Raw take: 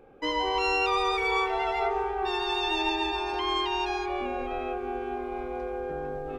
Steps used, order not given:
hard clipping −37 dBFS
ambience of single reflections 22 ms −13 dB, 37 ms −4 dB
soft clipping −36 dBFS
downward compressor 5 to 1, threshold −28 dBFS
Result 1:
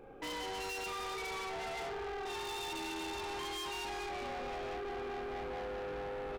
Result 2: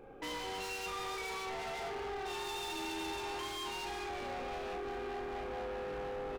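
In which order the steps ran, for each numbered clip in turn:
ambience of single reflections, then downward compressor, then hard clipping, then soft clipping
downward compressor, then hard clipping, then ambience of single reflections, then soft clipping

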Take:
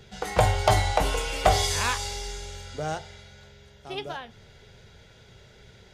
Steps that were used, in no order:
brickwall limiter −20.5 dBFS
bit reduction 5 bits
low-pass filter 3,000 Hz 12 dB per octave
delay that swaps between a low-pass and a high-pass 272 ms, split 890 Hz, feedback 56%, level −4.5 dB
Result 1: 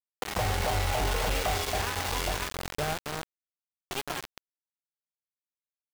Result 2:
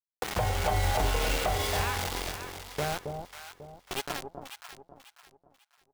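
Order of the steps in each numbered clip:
delay that swaps between a low-pass and a high-pass, then brickwall limiter, then low-pass filter, then bit reduction
low-pass filter, then bit reduction, then brickwall limiter, then delay that swaps between a low-pass and a high-pass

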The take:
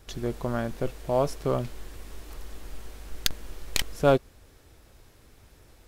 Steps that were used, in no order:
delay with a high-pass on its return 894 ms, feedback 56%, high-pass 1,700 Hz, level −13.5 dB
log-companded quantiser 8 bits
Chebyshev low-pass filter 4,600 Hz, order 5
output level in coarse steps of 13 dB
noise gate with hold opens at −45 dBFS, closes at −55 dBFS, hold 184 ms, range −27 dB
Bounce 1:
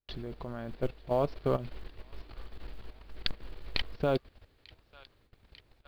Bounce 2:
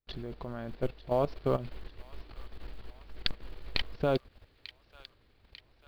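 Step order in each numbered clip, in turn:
delay with a high-pass on its return, then output level in coarse steps, then Chebyshev low-pass filter, then log-companded quantiser, then noise gate with hold
Chebyshev low-pass filter, then log-companded quantiser, then noise gate with hold, then output level in coarse steps, then delay with a high-pass on its return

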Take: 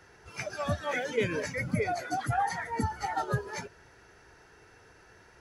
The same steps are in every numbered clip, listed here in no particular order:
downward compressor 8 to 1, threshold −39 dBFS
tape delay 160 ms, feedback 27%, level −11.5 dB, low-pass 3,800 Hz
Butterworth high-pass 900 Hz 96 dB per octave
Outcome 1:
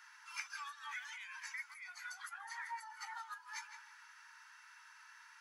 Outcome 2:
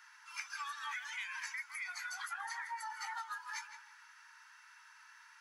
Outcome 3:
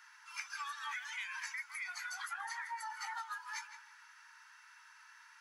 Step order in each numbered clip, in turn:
tape delay, then downward compressor, then Butterworth high-pass
Butterworth high-pass, then tape delay, then downward compressor
tape delay, then Butterworth high-pass, then downward compressor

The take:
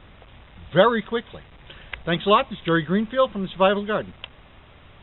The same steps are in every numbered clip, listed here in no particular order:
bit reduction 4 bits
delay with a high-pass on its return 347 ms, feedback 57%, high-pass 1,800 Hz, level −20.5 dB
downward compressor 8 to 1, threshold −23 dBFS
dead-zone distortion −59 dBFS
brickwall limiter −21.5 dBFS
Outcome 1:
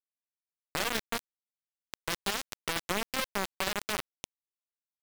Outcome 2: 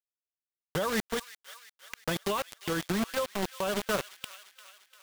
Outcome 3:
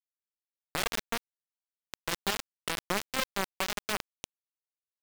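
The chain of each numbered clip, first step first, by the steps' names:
delay with a high-pass on its return, then brickwall limiter, then dead-zone distortion, then bit reduction, then downward compressor
dead-zone distortion, then bit reduction, then delay with a high-pass on its return, then downward compressor, then brickwall limiter
delay with a high-pass on its return, then downward compressor, then dead-zone distortion, then brickwall limiter, then bit reduction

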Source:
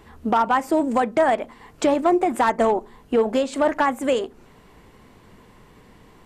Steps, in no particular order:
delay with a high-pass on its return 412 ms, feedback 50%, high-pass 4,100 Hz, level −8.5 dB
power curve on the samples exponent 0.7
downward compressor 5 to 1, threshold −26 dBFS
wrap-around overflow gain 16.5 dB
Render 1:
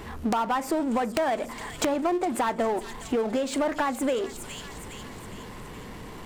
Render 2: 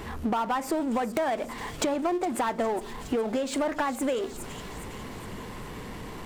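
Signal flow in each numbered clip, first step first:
delay with a high-pass on its return, then downward compressor, then wrap-around overflow, then power curve on the samples
power curve on the samples, then delay with a high-pass on its return, then downward compressor, then wrap-around overflow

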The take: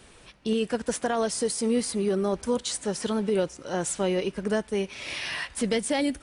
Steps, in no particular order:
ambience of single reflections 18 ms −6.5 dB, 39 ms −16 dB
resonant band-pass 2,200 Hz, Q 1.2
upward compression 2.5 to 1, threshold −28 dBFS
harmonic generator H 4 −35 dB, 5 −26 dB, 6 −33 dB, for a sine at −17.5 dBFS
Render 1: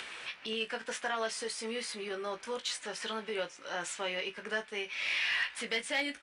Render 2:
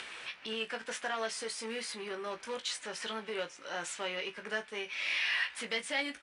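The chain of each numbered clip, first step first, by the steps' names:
ambience of single reflections, then upward compression, then resonant band-pass, then harmonic generator
harmonic generator, then ambience of single reflections, then upward compression, then resonant band-pass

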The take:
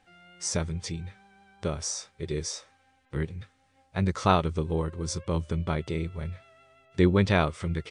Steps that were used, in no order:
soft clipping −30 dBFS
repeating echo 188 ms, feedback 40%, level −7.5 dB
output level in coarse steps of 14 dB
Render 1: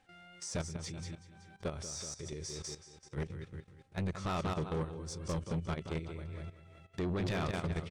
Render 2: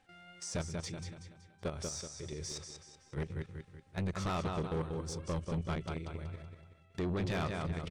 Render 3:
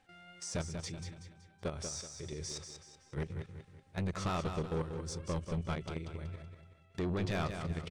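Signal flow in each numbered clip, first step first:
repeating echo, then output level in coarse steps, then soft clipping
output level in coarse steps, then repeating echo, then soft clipping
output level in coarse steps, then soft clipping, then repeating echo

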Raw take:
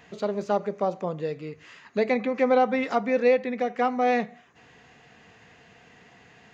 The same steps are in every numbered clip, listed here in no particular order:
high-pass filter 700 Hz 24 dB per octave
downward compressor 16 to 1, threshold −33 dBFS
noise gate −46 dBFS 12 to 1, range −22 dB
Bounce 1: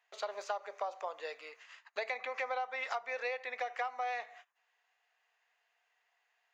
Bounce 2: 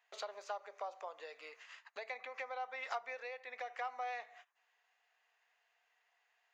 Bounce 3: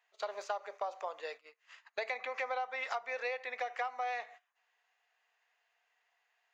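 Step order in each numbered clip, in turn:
noise gate, then high-pass filter, then downward compressor
noise gate, then downward compressor, then high-pass filter
high-pass filter, then noise gate, then downward compressor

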